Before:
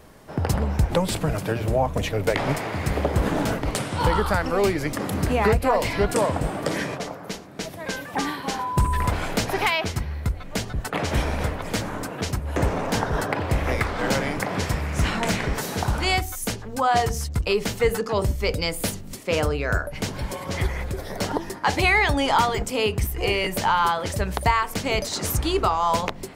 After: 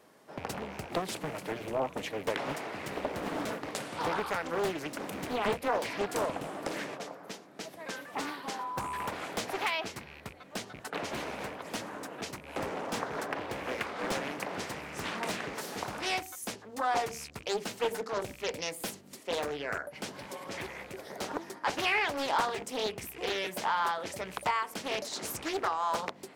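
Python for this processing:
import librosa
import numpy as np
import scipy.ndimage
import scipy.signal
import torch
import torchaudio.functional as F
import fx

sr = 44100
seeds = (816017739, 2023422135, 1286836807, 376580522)

y = fx.rattle_buzz(x, sr, strikes_db=-27.0, level_db=-27.0)
y = scipy.signal.sosfilt(scipy.signal.butter(2, 240.0, 'highpass', fs=sr, output='sos'), y)
y = fx.doppler_dist(y, sr, depth_ms=0.83)
y = y * 10.0 ** (-9.0 / 20.0)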